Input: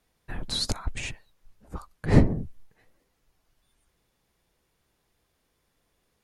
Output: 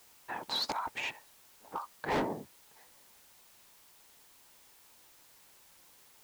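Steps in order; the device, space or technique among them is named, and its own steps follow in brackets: drive-through speaker (band-pass 400–3800 Hz; peaking EQ 910 Hz +12 dB 0.5 oct; hard clipper -27.5 dBFS, distortion -6 dB; white noise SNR 19 dB)

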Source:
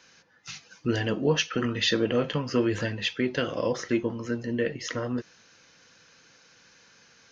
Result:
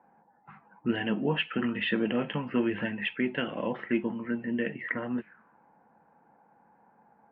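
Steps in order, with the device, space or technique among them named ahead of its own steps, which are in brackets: envelope filter bass rig (touch-sensitive low-pass 780–3000 Hz up, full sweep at -26.5 dBFS; cabinet simulation 79–2200 Hz, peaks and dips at 110 Hz -9 dB, 210 Hz +8 dB, 500 Hz -5 dB, 840 Hz +6 dB, 1.2 kHz -4 dB); trim -3.5 dB

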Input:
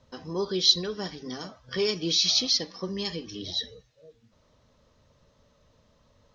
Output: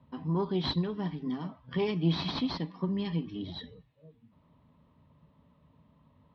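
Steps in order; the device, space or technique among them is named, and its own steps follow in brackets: guitar amplifier (valve stage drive 16 dB, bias 0.75; tone controls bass +7 dB, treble -8 dB; cabinet simulation 76–3500 Hz, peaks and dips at 120 Hz -4 dB, 160 Hz +9 dB, 270 Hz +7 dB, 510 Hz -6 dB, 970 Hz +8 dB, 1.5 kHz -6 dB)

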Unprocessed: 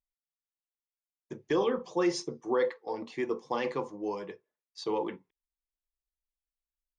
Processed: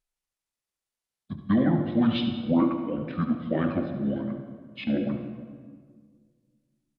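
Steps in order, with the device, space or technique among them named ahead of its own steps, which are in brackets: monster voice (pitch shift -7 st; formant shift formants -2.5 st; bass shelf 170 Hz +3 dB; delay 72 ms -11 dB; reverberation RT60 1.8 s, pre-delay 80 ms, DRR 8 dB); trim +5 dB

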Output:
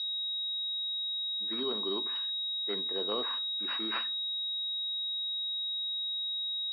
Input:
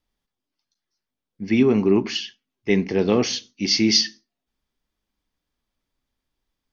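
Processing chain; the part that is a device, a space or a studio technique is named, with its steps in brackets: toy sound module (decimation joined by straight lines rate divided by 6×; class-D stage that switches slowly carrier 3.8 kHz; cabinet simulation 600–4700 Hz, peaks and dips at 800 Hz -7 dB, 1.1 kHz +5 dB, 2.2 kHz -6 dB, 3.8 kHz +5 dB); trim -8.5 dB

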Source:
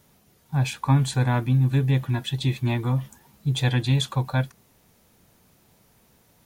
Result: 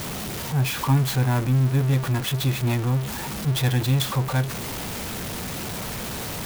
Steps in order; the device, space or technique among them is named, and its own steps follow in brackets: early CD player with a faulty converter (jump at every zero crossing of -22.5 dBFS; sampling jitter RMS 0.033 ms); trim -2 dB

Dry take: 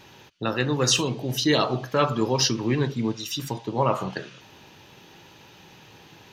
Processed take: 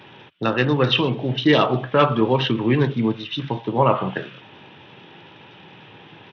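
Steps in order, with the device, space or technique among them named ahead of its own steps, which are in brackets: Bluetooth headset (high-pass 100 Hz 24 dB/octave; resampled via 8 kHz; trim +5.5 dB; SBC 64 kbps 32 kHz)

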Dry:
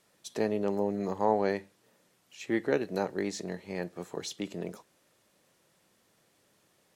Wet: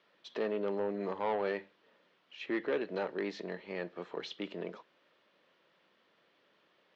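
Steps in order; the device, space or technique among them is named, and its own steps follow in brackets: overdrive pedal into a guitar cabinet (overdrive pedal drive 19 dB, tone 1.8 kHz, clips at -12.5 dBFS; cabinet simulation 100–4500 Hz, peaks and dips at 120 Hz -5 dB, 770 Hz -5 dB, 3.1 kHz +4 dB); trim -8.5 dB

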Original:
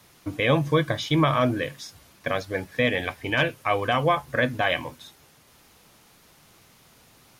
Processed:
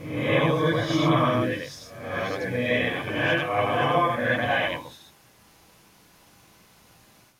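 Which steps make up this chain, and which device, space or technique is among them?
reverse reverb (reverse; reverberation RT60 0.85 s, pre-delay 71 ms, DRR -7 dB; reverse); trim -7.5 dB

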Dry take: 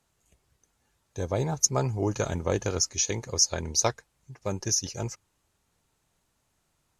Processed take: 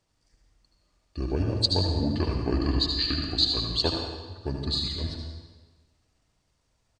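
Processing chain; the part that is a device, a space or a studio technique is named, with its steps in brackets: 2.39–3.53 s: rippled EQ curve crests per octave 1.5, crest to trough 6 dB; monster voice (pitch shift -6 st; bass shelf 160 Hz +5.5 dB; delay 77 ms -8 dB; reverberation RT60 1.4 s, pre-delay 66 ms, DRR 3 dB); trim -2.5 dB

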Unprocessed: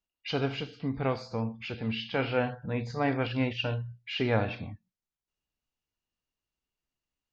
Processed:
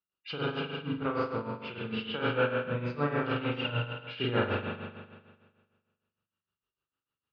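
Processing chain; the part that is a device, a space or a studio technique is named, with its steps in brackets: combo amplifier with spring reverb and tremolo (spring tank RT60 1.6 s, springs 41 ms, chirp 65 ms, DRR -6.5 dB; tremolo 6.6 Hz, depth 70%; cabinet simulation 100–4400 Hz, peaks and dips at 240 Hz -6 dB, 700 Hz -10 dB, 1.3 kHz +8 dB, 2.1 kHz -8 dB); trim -2.5 dB

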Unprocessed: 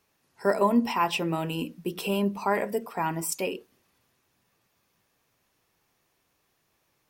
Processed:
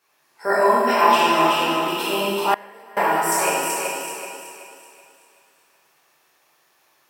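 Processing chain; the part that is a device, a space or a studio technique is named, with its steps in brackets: filter by subtraction (in parallel: low-pass 1 kHz 12 dB/octave + polarity flip); on the sum: thinning echo 378 ms, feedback 39%, high-pass 190 Hz, level -4.5 dB; plate-style reverb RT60 1.9 s, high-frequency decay 0.95×, DRR -9 dB; 2.54–2.97 s: gate -7 dBFS, range -23 dB

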